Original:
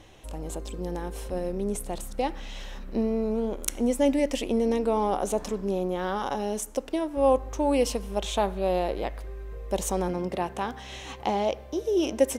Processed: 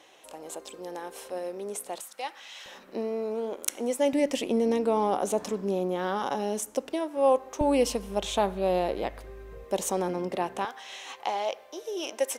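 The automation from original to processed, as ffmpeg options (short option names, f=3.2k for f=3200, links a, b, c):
-af "asetnsamples=n=441:p=0,asendcmd='2 highpass f 990;2.66 highpass f 380;4.13 highpass f 150;6.93 highpass f 340;7.61 highpass f 81;9.64 highpass f 200;10.65 highpass f 670',highpass=470"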